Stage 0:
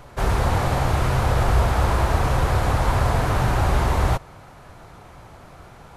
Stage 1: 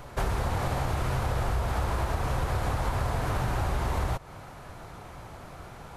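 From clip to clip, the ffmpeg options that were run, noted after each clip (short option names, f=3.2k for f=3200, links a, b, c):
-af "highshelf=f=12k:g=3.5,acompressor=threshold=-25dB:ratio=6"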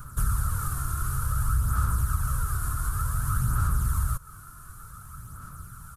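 -af "firequalizer=gain_entry='entry(130,0);entry(360,-18);entry(770,-25);entry(1300,6);entry(2000,-19);entry(9300,13)':delay=0.05:min_phase=1,aphaser=in_gain=1:out_gain=1:delay=2.9:decay=0.42:speed=0.55:type=sinusoidal"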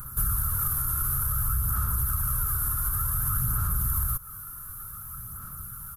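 -filter_complex "[0:a]asplit=2[a][b];[b]alimiter=limit=-23.5dB:level=0:latency=1,volume=-1dB[c];[a][c]amix=inputs=2:normalize=0,aexciter=amount=6.2:drive=7.8:freq=11k,volume=-6.5dB"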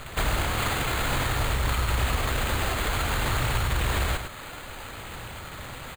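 -filter_complex "[0:a]acrusher=samples=8:mix=1:aa=0.000001,asplit=2[a][b];[b]aecho=0:1:101:0.447[c];[a][c]amix=inputs=2:normalize=0"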